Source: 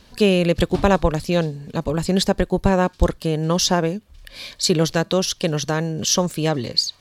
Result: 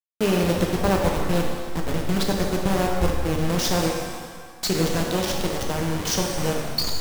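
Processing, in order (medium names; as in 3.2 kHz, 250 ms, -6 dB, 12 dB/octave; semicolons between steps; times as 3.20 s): send-on-delta sampling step -16 dBFS; pitch-shifted reverb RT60 1.6 s, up +7 st, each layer -8 dB, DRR 0.5 dB; trim -6.5 dB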